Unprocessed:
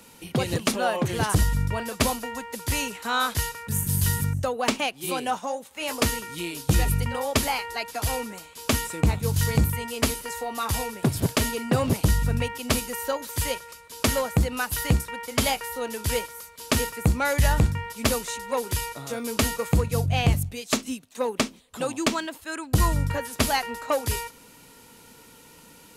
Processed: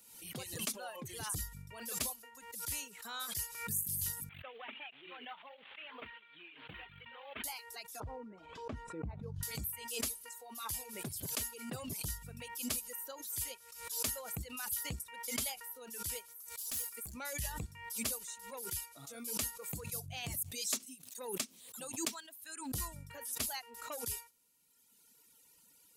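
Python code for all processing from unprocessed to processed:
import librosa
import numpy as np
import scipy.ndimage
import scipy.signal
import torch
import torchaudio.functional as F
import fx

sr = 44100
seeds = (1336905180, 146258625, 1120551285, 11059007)

y = fx.chain(x, sr, fx.cvsd(bps=16000),
    fx.tilt_eq(slope=4.0), at=(4.29, 7.44))
y = fx.chain(y, sr, fx.lowpass(hz=1000.0, slope=12),
    fx.env_flatten(amount_pct=50), at=(8.0, 9.43))
y = fx.chain(y, sr, fx.high_shelf(hz=3300.0, db=9.5),
    fx.tube_stage(drive_db=26.0, bias=0.4), at=(16.48, 17.14))
y = fx.chain(y, sr, fx.highpass(hz=92.0, slope=12),
    fx.high_shelf(hz=5300.0, db=4.0), at=(19.68, 22.61))
y = fx.dereverb_blind(y, sr, rt60_s=1.8)
y = F.preemphasis(torch.from_numpy(y), 0.8).numpy()
y = fx.pre_swell(y, sr, db_per_s=60.0)
y = y * librosa.db_to_amplitude(-8.0)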